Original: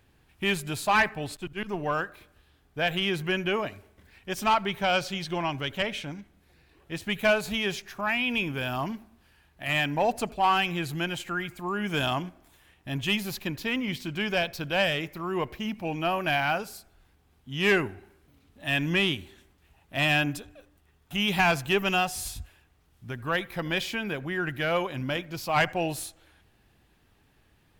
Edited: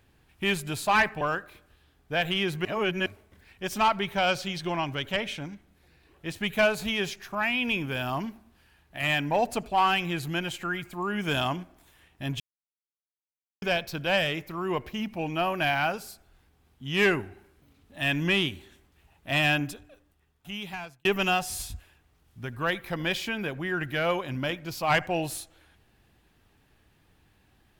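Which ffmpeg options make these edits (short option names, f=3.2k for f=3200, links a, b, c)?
-filter_complex "[0:a]asplit=7[a][b][c][d][e][f][g];[a]atrim=end=1.212[h];[b]atrim=start=1.868:end=3.312[i];[c]atrim=start=3.308:end=3.722,asetpts=PTS-STARTPTS,areverse[j];[d]atrim=start=3.718:end=13.06,asetpts=PTS-STARTPTS,afade=t=out:st=9.338:d=0.004:c=hsin[k];[e]atrim=start=13.06:end=14.28,asetpts=PTS-STARTPTS,volume=0[l];[f]atrim=start=14.28:end=21.71,asetpts=PTS-STARTPTS,afade=t=in:d=0.004:c=hsin,afade=t=out:st=5.9:d=1.53[m];[g]atrim=start=21.71,asetpts=PTS-STARTPTS,afade=t=in:d=0.004:c=hsin[n];[h][i]acrossfade=d=0.004:c1=hsin:c2=hsin[o];[o][j]acrossfade=d=0.004:c1=hsin:c2=hsin[p];[k][l][m][n]concat=n=4:v=0:a=1[q];[p][q]acrossfade=d=0.004:c1=hsin:c2=hsin"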